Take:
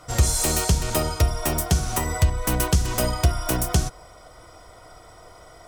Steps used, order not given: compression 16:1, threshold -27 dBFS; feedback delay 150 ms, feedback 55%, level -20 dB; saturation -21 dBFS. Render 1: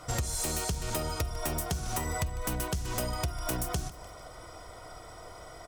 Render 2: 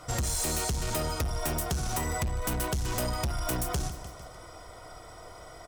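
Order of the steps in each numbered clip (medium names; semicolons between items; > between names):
compression > feedback delay > saturation; feedback delay > saturation > compression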